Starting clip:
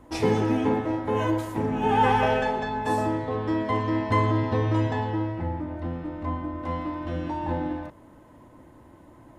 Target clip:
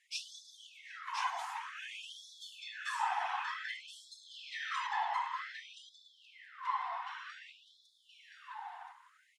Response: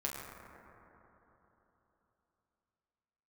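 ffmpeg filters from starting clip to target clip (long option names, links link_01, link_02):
-filter_complex "[0:a]acrossover=split=5100[link_01][link_02];[link_01]alimiter=limit=-18.5dB:level=0:latency=1:release=383[link_03];[link_03][link_02]amix=inputs=2:normalize=0,asettb=1/sr,asplit=3[link_04][link_05][link_06];[link_04]atrim=end=4.314[link_07];[link_05]atrim=start=4.31:end=4.87,asetpts=PTS-STARTPTS,afade=type=in:duration=0.004:curve=qsin,afade=type=out:start_time=0.556:duration=0.004:curve=qsin,acontrast=52[link_08];[link_06]atrim=start=4.866[link_09];[link_07][link_08]acrossfade=duration=0.004:curve1=hsin:curve2=qsin[link_10];[link_10][link_09]acrossfade=duration=0.004:curve1=qsin:curve2=hsin,afftfilt=real='hypot(re,im)*cos(2*PI*random(0))':imag='hypot(re,im)*sin(2*PI*random(1))':win_size=512:overlap=0.75,highpass=150,lowpass=7200,aecho=1:1:1024:0.501,afftfilt=real='re*gte(b*sr/1024,680*pow(3400/680,0.5+0.5*sin(2*PI*0.54*pts/sr)))':imag='im*gte(b*sr/1024,680*pow(3400/680,0.5+0.5*sin(2*PI*0.54*pts/sr)))':win_size=1024:overlap=0.75,volume=5dB"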